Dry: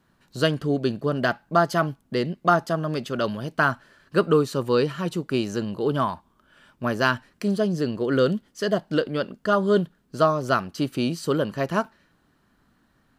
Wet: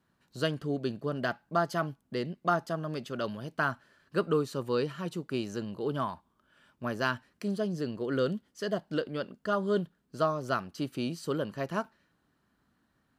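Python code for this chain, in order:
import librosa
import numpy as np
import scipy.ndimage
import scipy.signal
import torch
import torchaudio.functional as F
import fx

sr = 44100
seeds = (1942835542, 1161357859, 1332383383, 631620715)

y = scipy.signal.sosfilt(scipy.signal.butter(2, 44.0, 'highpass', fs=sr, output='sos'), x)
y = y * 10.0 ** (-8.5 / 20.0)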